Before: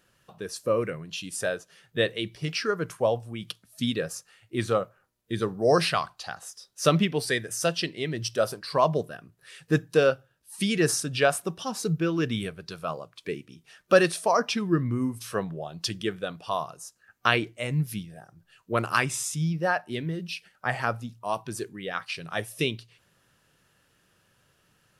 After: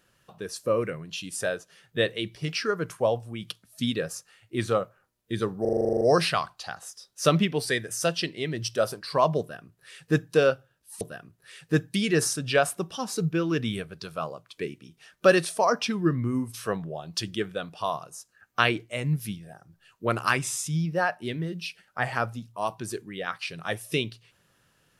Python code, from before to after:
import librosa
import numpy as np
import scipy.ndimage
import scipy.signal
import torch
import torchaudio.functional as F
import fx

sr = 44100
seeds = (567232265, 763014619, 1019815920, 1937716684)

y = fx.edit(x, sr, fx.stutter(start_s=5.61, slice_s=0.04, count=11),
    fx.duplicate(start_s=9.0, length_s=0.93, to_s=10.61), tone=tone)